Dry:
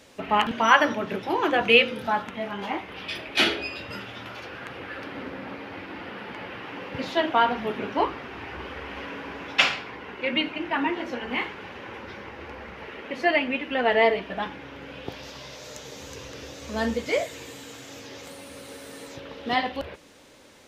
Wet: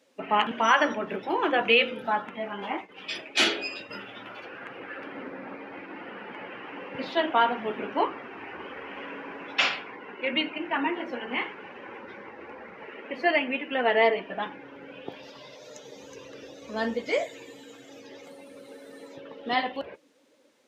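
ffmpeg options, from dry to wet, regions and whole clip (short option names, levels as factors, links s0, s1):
-filter_complex "[0:a]asettb=1/sr,asplit=3[s0][s1][s2];[s0]atrim=end=2.774[s3];[s1]atrim=start=2.77:end=3.91,asetpts=PTS-STARTPTS,afade=t=in:d=0.004:c=qsin,afade=t=out:st=1.136:d=0.004:c=qsin,equalizer=f=7300:t=o:w=0.72:g=11,agate=range=0.0224:threshold=0.0158:ratio=3:release=100:detection=peak[s4];[s2]atrim=start=3.906[s5];[s3][s4]acrossfade=d=0.004:c1=hsin:c2=qsin[s6];[s6][s5]acrossfade=d=0.004:c1=qsin:c2=hsin,afftdn=nr=13:nf=-42,highpass=210,alimiter=level_in=2:limit=0.891:release=50:level=0:latency=1,volume=0.422"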